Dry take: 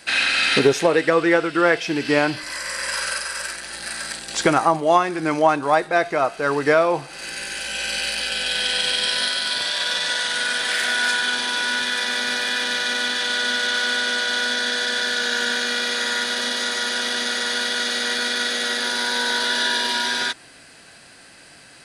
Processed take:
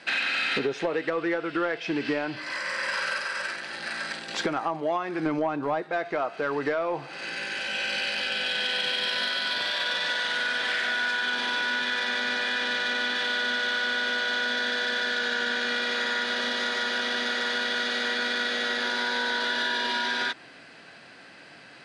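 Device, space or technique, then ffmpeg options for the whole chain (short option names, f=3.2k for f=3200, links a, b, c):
AM radio: -filter_complex "[0:a]asettb=1/sr,asplit=3[a][b][c];[a]atrim=end=5.264[d];[b]atrim=start=5.26:end=5.83,asetpts=PTS-STARTPTS,afade=t=in:d=0.004:c=qsin,afade=t=out:st=0.566:d=0.004:c=qsin,lowshelf=f=450:g=10[e];[c]atrim=start=5.826[f];[d][e]acrossfade=d=0.004:c1=hsin:c2=qsin[g];[g][f]acrossfade=d=0.004:c1=qsin:c2=hsin,highpass=140,lowpass=3.5k,acompressor=threshold=-23dB:ratio=6,asoftclip=type=tanh:threshold=-16.5dB"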